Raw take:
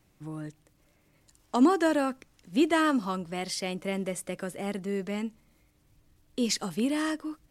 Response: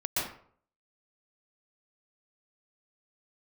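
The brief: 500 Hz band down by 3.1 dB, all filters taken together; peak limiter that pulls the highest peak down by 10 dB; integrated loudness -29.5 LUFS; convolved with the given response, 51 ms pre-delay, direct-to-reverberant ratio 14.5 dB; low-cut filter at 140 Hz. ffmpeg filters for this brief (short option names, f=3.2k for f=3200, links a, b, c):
-filter_complex "[0:a]highpass=140,equalizer=f=500:t=o:g=-4.5,alimiter=limit=-23dB:level=0:latency=1,asplit=2[a][b];[1:a]atrim=start_sample=2205,adelay=51[c];[b][c]afir=irnorm=-1:irlink=0,volume=-22.5dB[d];[a][d]amix=inputs=2:normalize=0,volume=5dB"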